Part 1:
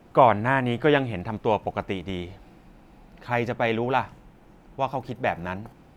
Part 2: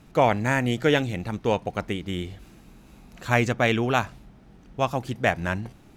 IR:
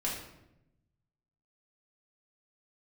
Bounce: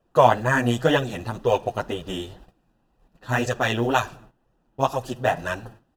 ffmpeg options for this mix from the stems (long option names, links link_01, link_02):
-filter_complex "[0:a]volume=3dB,asplit=2[link_01][link_02];[1:a]bass=frequency=250:gain=-9,treble=frequency=4000:gain=5,acrossover=split=1000[link_03][link_04];[link_03]aeval=exprs='val(0)*(1-0.5/2+0.5/2*cos(2*PI*2.1*n/s))':channel_layout=same[link_05];[link_04]aeval=exprs='val(0)*(1-0.5/2-0.5/2*cos(2*PI*2.1*n/s))':channel_layout=same[link_06];[link_05][link_06]amix=inputs=2:normalize=0,acrusher=bits=8:mode=log:mix=0:aa=0.000001,adelay=7.1,volume=3dB,asplit=2[link_07][link_08];[link_08]volume=-19.5dB[link_09];[link_02]apad=whole_len=263516[link_10];[link_07][link_10]sidechaingate=range=-33dB:threshold=-35dB:ratio=16:detection=peak[link_11];[2:a]atrim=start_sample=2205[link_12];[link_09][link_12]afir=irnorm=-1:irlink=0[link_13];[link_01][link_11][link_13]amix=inputs=3:normalize=0,asuperstop=centerf=2200:order=4:qfactor=4.5,flanger=delay=1.6:depth=7.8:regen=-1:speed=2:shape=sinusoidal,agate=range=-16dB:threshold=-46dB:ratio=16:detection=peak"